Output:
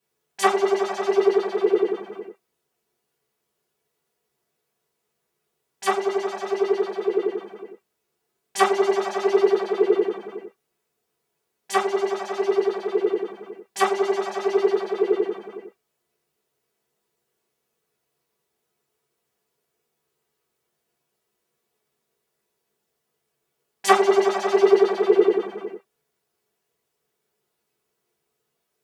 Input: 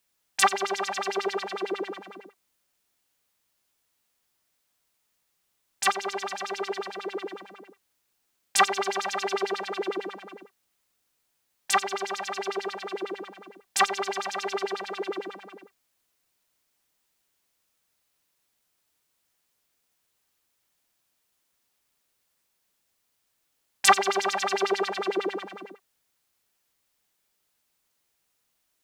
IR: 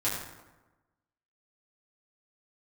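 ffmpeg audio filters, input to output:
-filter_complex "[0:a]equalizer=f=370:w=0.64:g=13.5[a];[1:a]atrim=start_sample=2205,atrim=end_sample=3528,asetrate=61740,aresample=44100[b];[a][b]afir=irnorm=-1:irlink=0,volume=-7dB"

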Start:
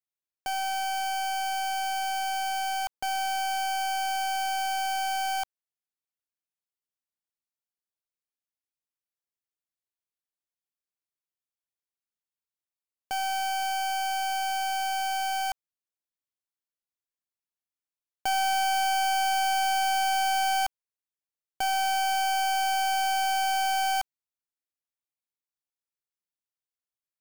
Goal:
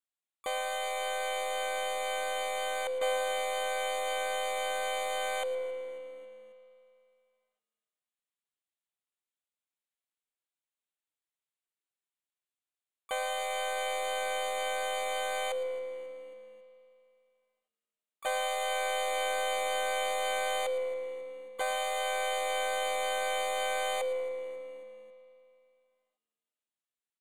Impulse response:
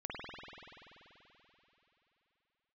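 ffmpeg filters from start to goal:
-filter_complex "[0:a]lowpass=9.5k,bass=f=250:g=-14,treble=f=4k:g=6,bandreject=f=48.98:t=h:w=4,bandreject=f=97.96:t=h:w=4,bandreject=f=146.94:t=h:w=4,bandreject=f=195.92:t=h:w=4,bandreject=f=244.9:t=h:w=4,bandreject=f=293.88:t=h:w=4,bandreject=f=342.86:t=h:w=4,bandreject=f=391.84:t=h:w=4,bandreject=f=440.82:t=h:w=4,bandreject=f=489.8:t=h:w=4,bandreject=f=538.78:t=h:w=4,bandreject=f=587.76:t=h:w=4,bandreject=f=636.74:t=h:w=4,bandreject=f=685.72:t=h:w=4,acompressor=threshold=-26dB:ratio=2.5,asplit=4[a][b][c][d];[b]asetrate=29433,aresample=44100,atempo=1.49831,volume=0dB[e];[c]asetrate=35002,aresample=44100,atempo=1.25992,volume=-4dB[f];[d]asetrate=66075,aresample=44100,atempo=0.66742,volume=-13dB[g];[a][e][f][g]amix=inputs=4:normalize=0,asuperstop=centerf=5300:order=4:qfactor=1.7,asplit=5[h][i][j][k][l];[i]adelay=272,afreqshift=-75,volume=-23dB[m];[j]adelay=544,afreqshift=-150,volume=-28.4dB[n];[k]adelay=816,afreqshift=-225,volume=-33.7dB[o];[l]adelay=1088,afreqshift=-300,volume=-39.1dB[p];[h][m][n][o][p]amix=inputs=5:normalize=0,asplit=2[q][r];[1:a]atrim=start_sample=2205,asetrate=57330,aresample=44100,adelay=114[s];[r][s]afir=irnorm=-1:irlink=0,volume=-7.5dB[t];[q][t]amix=inputs=2:normalize=0,volume=-6dB"

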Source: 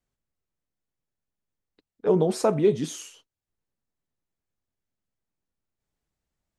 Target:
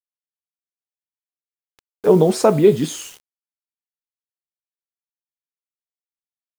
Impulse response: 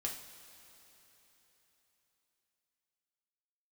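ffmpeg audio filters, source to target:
-filter_complex "[0:a]acrusher=bits=7:mix=0:aa=0.000001,asettb=1/sr,asplit=3[a][b][c];[a]atrim=end=2.534[d];[b]atrim=start=2.53:end=3.05,asetpts=PTS-STARTPTS,afade=t=in:d=0.004:c=qsin,afade=t=out:st=0.516:d=0.004:c=qsin,bandreject=f=5.8k:w=7.1[e];[c]atrim=start=3.046[f];[d][e]acrossfade=d=0.004:c1=hsin:c2=qsin[g];[g][f]acrossfade=d=0.004:c1=qsin:c2=hsin,volume=8dB"

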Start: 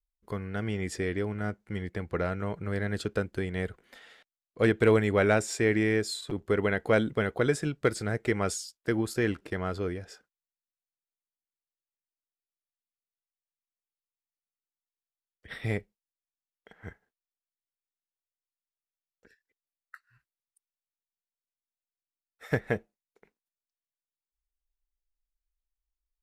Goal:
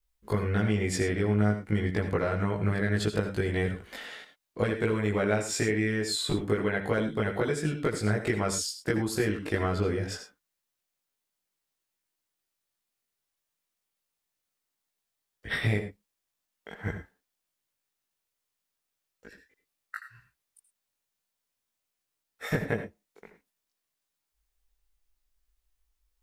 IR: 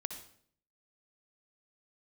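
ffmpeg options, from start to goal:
-filter_complex "[0:a]acompressor=threshold=-35dB:ratio=12,asplit=2[a][b];[1:a]atrim=start_sample=2205,afade=t=out:st=0.16:d=0.01,atrim=end_sample=7497,adelay=19[c];[b][c]afir=irnorm=-1:irlink=0,volume=3.5dB[d];[a][d]amix=inputs=2:normalize=0,volume=7dB"

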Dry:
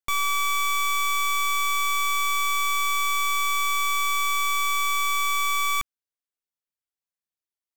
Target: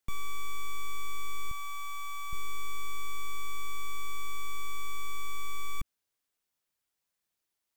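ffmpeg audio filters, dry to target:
-filter_complex "[0:a]asoftclip=type=tanh:threshold=-28dB,asettb=1/sr,asplit=3[a][b][c];[a]atrim=end=1.514[d];[b]atrim=start=1.51:end=2.33,asetpts=PTS-STARTPTS,afade=t=in:d=0.004:c=qsin,afade=t=out:st=0.816:d=0.004:c=qsin,lowshelf=f=600:t=q:w=3:g=-9[e];[c]atrim=start=2.326[f];[d][e]acrossfade=d=0.004:c1=hsin:c2=qsin[g];[g][f]acrossfade=d=0.004:c1=qsin:c2=hsin,acrossover=split=310[h][i];[i]alimiter=level_in=18.5dB:limit=-24dB:level=0:latency=1,volume=-18.5dB[j];[h][j]amix=inputs=2:normalize=0,volume=8.5dB"

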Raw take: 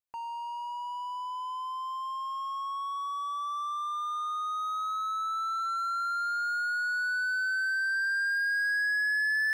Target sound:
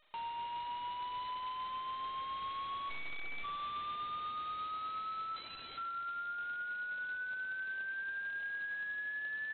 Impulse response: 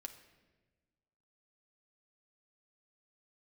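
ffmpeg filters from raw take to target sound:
-filter_complex "[0:a]acompressor=threshold=-32dB:ratio=5,alimiter=level_in=15.5dB:limit=-24dB:level=0:latency=1,volume=-15.5dB,asplit=3[a][b][c];[a]afade=t=out:st=5.36:d=0.02[d];[b]acontrast=27,afade=t=in:st=5.36:d=0.02,afade=t=out:st=5.76:d=0.02[e];[c]afade=t=in:st=5.76:d=0.02[f];[d][e][f]amix=inputs=3:normalize=0,aeval=exprs='(mod(89.1*val(0)+1,2)-1)/89.1':c=same,crystalizer=i=2:c=0,asplit=3[g][h][i];[g]afade=t=out:st=2.89:d=0.02[j];[h]aeval=exprs='abs(val(0))':c=same,afade=t=in:st=2.89:d=0.02,afade=t=out:st=3.43:d=0.02[k];[i]afade=t=in:st=3.43:d=0.02[l];[j][k][l]amix=inputs=3:normalize=0,asplit=2[m][n];[n]aecho=0:1:100|200:0.15|0.0239[o];[m][o]amix=inputs=2:normalize=0,volume=2.5dB" -ar 8000 -c:a adpcm_g726 -b:a 16k

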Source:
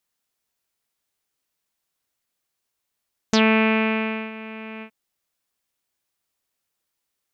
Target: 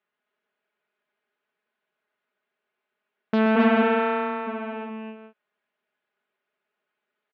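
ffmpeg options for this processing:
-filter_complex "[0:a]aecho=1:1:4.8:0.68,asplit=3[a][b][c];[a]afade=t=out:st=3.55:d=0.02[d];[b]afreqshift=15,afade=t=in:st=3.55:d=0.02,afade=t=out:st=4.46:d=0.02[e];[c]afade=t=in:st=4.46:d=0.02[f];[d][e][f]amix=inputs=3:normalize=0,asoftclip=type=tanh:threshold=-16dB,highpass=200,equalizer=f=400:t=q:w=4:g=5,equalizer=f=610:t=q:w=4:g=4,equalizer=f=1.5k:t=q:w=4:g=6,lowpass=f=2.8k:w=0.5412,lowpass=f=2.8k:w=1.3066,asplit=2[g][h];[h]aecho=0:1:126|258|266|430:0.355|0.316|0.531|0.251[i];[g][i]amix=inputs=2:normalize=0"

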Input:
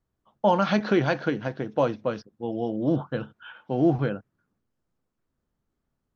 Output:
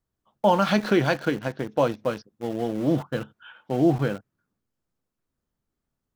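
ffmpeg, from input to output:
-filter_complex "[0:a]highshelf=f=3.3k:g=5,asplit=2[a][b];[b]aeval=exprs='val(0)*gte(abs(val(0)),0.0282)':c=same,volume=-3dB[c];[a][c]amix=inputs=2:normalize=0,volume=-3.5dB"

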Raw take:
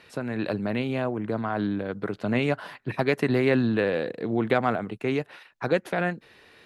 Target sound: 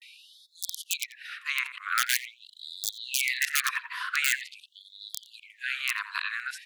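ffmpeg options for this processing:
-filter_complex "[0:a]areverse,acrossover=split=870[a][b];[b]aeval=exprs='(mod(11.2*val(0)+1,2)-1)/11.2':c=same[c];[a][c]amix=inputs=2:normalize=0,asplit=2[d][e];[e]adelay=87,lowpass=f=1.2k:p=1,volume=-7dB,asplit=2[f][g];[g]adelay=87,lowpass=f=1.2k:p=1,volume=0.3,asplit=2[h][i];[i]adelay=87,lowpass=f=1.2k:p=1,volume=0.3,asplit=2[j][k];[k]adelay=87,lowpass=f=1.2k:p=1,volume=0.3[l];[d][f][h][j][l]amix=inputs=5:normalize=0,afftfilt=real='re*gte(b*sr/1024,940*pow(3400/940,0.5+0.5*sin(2*PI*0.45*pts/sr)))':imag='im*gte(b*sr/1024,940*pow(3400/940,0.5+0.5*sin(2*PI*0.45*pts/sr)))':win_size=1024:overlap=0.75,volume=7.5dB"

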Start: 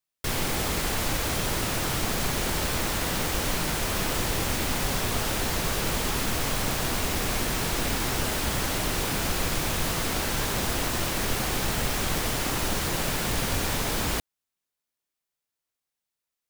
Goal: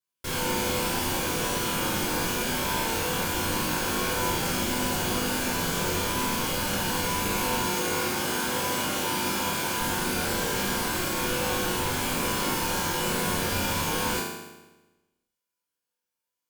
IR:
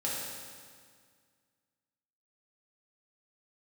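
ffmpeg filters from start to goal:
-filter_complex "[0:a]asettb=1/sr,asplit=3[a][b][c];[a]atrim=end=7.664[d];[b]atrim=start=7.66:end=9.81,asetpts=PTS-STARTPTS,afade=t=in:d=0.004:c=qsin,afade=t=out:st=2.146:d=0.004:c=qsin,highpass=f=160:p=1[e];[c]atrim=start=9.806[f];[d][e]acrossfade=d=0.004:c1=hsin:c2=qsin[g];[g][f]acrossfade=d=0.004:c1=qsin:c2=hsin[h];[1:a]atrim=start_sample=2205,asetrate=79380,aresample=44100[i];[h][i]afir=irnorm=-1:irlink=0"

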